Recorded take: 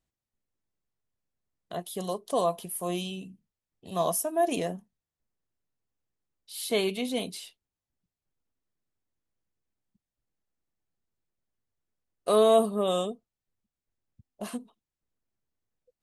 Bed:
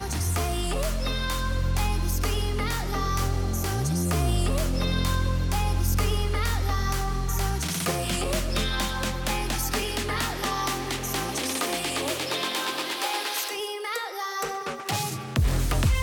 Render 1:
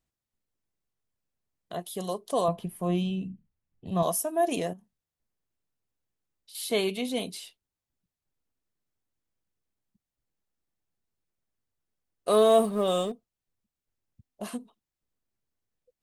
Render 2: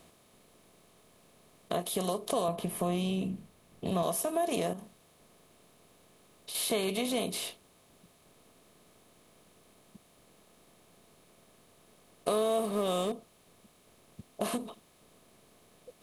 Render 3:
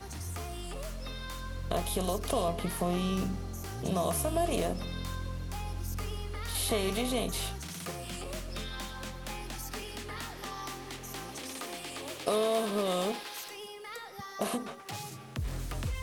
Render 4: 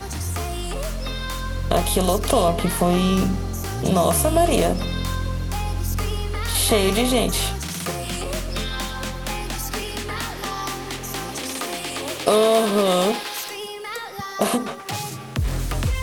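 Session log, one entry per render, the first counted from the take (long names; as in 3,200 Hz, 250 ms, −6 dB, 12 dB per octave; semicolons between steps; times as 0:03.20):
0:02.48–0:04.03: bass and treble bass +11 dB, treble −13 dB; 0:04.73–0:06.55: downward compressor 3 to 1, threshold −49 dBFS; 0:12.31–0:13.12: mu-law and A-law mismatch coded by mu
compressor on every frequency bin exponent 0.6; downward compressor 3 to 1, threshold −29 dBFS, peak gain reduction 11 dB
mix in bed −12.5 dB
level +12 dB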